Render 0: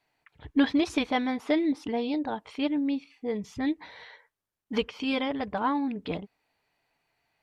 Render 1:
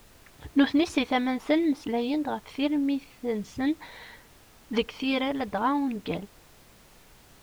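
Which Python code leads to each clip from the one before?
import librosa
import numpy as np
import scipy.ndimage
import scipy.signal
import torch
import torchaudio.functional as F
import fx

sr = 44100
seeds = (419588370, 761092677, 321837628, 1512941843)

y = fx.dmg_noise_colour(x, sr, seeds[0], colour='pink', level_db=-56.0)
y = F.gain(torch.from_numpy(y), 1.5).numpy()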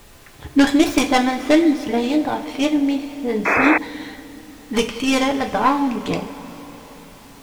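y = fx.tracing_dist(x, sr, depth_ms=0.15)
y = fx.rev_double_slope(y, sr, seeds[1], early_s=0.34, late_s=4.8, knee_db=-18, drr_db=3.5)
y = fx.spec_paint(y, sr, seeds[2], shape='noise', start_s=3.45, length_s=0.33, low_hz=280.0, high_hz=2600.0, level_db=-24.0)
y = F.gain(torch.from_numpy(y), 7.5).numpy()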